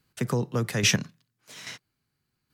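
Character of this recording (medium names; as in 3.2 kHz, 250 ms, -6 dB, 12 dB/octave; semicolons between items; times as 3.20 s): chopped level 1.2 Hz, depth 60%, duty 15%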